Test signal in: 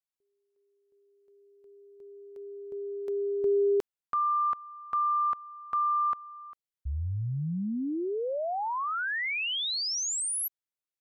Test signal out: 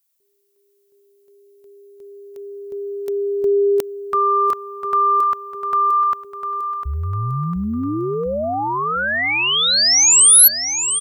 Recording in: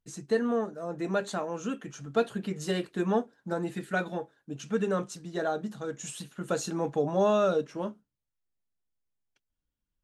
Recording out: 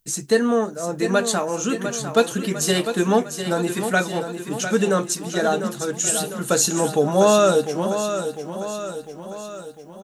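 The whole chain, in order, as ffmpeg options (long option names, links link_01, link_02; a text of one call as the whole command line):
ffmpeg -i in.wav -af "aemphasis=mode=production:type=75kf,aecho=1:1:701|1402|2103|2804|3505|4206:0.355|0.195|0.107|0.059|0.0325|0.0179,volume=8.5dB" out.wav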